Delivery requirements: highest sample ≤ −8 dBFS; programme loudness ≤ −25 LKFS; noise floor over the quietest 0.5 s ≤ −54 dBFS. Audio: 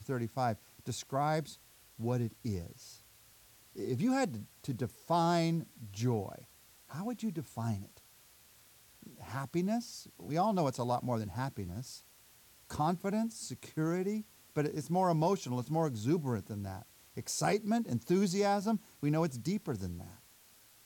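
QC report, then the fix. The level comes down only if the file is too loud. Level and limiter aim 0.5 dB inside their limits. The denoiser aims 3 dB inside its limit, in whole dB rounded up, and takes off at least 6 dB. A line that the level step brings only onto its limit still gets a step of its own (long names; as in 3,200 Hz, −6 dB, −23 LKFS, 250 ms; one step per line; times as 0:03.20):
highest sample −18.5 dBFS: in spec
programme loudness −35.0 LKFS: in spec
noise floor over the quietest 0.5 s −62 dBFS: in spec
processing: no processing needed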